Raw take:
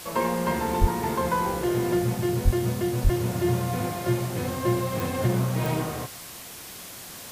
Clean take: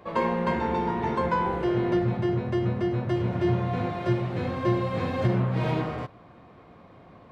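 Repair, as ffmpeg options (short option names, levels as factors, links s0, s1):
-filter_complex "[0:a]adeclick=t=4,asplit=3[s0][s1][s2];[s0]afade=t=out:st=0.8:d=0.02[s3];[s1]highpass=f=140:w=0.5412,highpass=f=140:w=1.3066,afade=t=in:st=0.8:d=0.02,afade=t=out:st=0.92:d=0.02[s4];[s2]afade=t=in:st=0.92:d=0.02[s5];[s3][s4][s5]amix=inputs=3:normalize=0,asplit=3[s6][s7][s8];[s6]afade=t=out:st=2.44:d=0.02[s9];[s7]highpass=f=140:w=0.5412,highpass=f=140:w=1.3066,afade=t=in:st=2.44:d=0.02,afade=t=out:st=2.56:d=0.02[s10];[s8]afade=t=in:st=2.56:d=0.02[s11];[s9][s10][s11]amix=inputs=3:normalize=0,asplit=3[s12][s13][s14];[s12]afade=t=out:st=3.03:d=0.02[s15];[s13]highpass=f=140:w=0.5412,highpass=f=140:w=1.3066,afade=t=in:st=3.03:d=0.02,afade=t=out:st=3.15:d=0.02[s16];[s14]afade=t=in:st=3.15:d=0.02[s17];[s15][s16][s17]amix=inputs=3:normalize=0,afwtdn=0.01"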